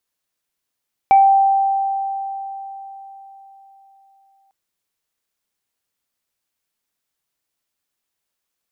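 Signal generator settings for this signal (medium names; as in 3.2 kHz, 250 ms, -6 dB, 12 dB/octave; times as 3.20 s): sine partials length 3.40 s, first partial 783 Hz, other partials 2.31 kHz, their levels -18 dB, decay 4.08 s, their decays 0.30 s, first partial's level -6.5 dB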